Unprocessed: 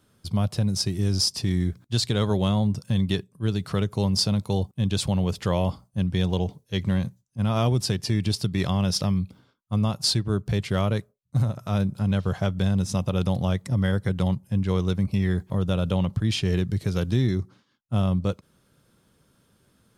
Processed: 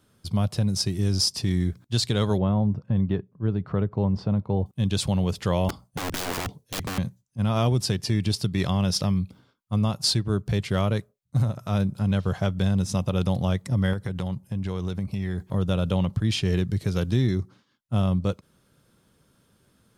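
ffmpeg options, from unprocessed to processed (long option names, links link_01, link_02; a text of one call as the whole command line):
ffmpeg -i in.wav -filter_complex "[0:a]asettb=1/sr,asplit=3[link_01][link_02][link_03];[link_01]atrim=end=2.384[link_04];[link_02]atrim=start=2.38:end=4.66,asetpts=PTS-STARTPTS,afade=type=in:duration=0.004:curve=qsin,afade=type=out:start_time=2.276:duration=0.004:curve=qsin,lowpass=1300[link_05];[link_03]atrim=start=4.656[link_06];[link_04][link_05]acrossfade=duration=0.004:curve1=hsin:curve2=qsin[link_07];[link_07][link_06]acrossfade=duration=0.004:curve1=qsin:curve2=hsin,asettb=1/sr,asplit=3[link_08][link_09][link_10];[link_08]atrim=end=5.694[link_11];[link_09]atrim=start=5.69:end=6.98,asetpts=PTS-STARTPTS,afade=type=in:duration=0.004:curve=qsin,afade=type=out:start_time=1.286:duration=0.004:curve=qsin,aeval=exprs='(mod(15*val(0)+1,2)-1)/15':channel_layout=same[link_12];[link_10]atrim=start=6.976[link_13];[link_11][link_12]acrossfade=duration=0.004:curve1=hsin:curve2=qsin[link_14];[link_14][link_13]acrossfade=duration=0.004:curve1=qsin:curve2=hsin,asettb=1/sr,asplit=3[link_15][link_16][link_17];[link_15]atrim=end=13.934[link_18];[link_16]atrim=start=13.93:end=15.53,asetpts=PTS-STARTPTS,afade=type=in:duration=0.004:curve=qsin,afade=type=out:start_time=1.596:duration=0.004:curve=qsin,acompressor=threshold=-24dB:ratio=6:attack=3.2:release=140:knee=1:detection=peak[link_19];[link_17]atrim=start=15.526[link_20];[link_18][link_19]acrossfade=duration=0.004:curve1=hsin:curve2=qsin[link_21];[link_21][link_20]acrossfade=duration=0.004:curve1=qsin:curve2=hsin" out.wav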